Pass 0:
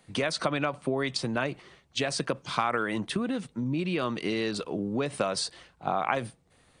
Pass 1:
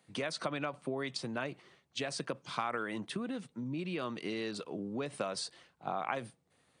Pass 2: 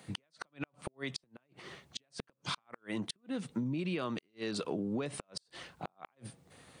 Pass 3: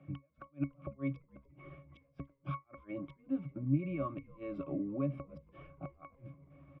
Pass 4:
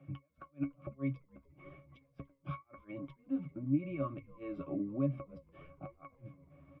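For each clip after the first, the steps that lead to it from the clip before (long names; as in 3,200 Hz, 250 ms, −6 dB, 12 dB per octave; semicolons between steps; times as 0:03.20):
high-pass filter 110 Hz; level −8 dB
low-shelf EQ 190 Hz +3 dB; downward compressor 16 to 1, threshold −44 dBFS, peak gain reduction 16.5 dB; gate with flip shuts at −37 dBFS, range −39 dB; level +12.5 dB
Savitzky-Golay smoothing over 25 samples; resonances in every octave C#, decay 0.14 s; echo with shifted repeats 290 ms, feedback 57%, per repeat −73 Hz, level −24 dB; level +10 dB
flanger 0.99 Hz, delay 7.2 ms, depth 5.3 ms, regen +38%; level +3 dB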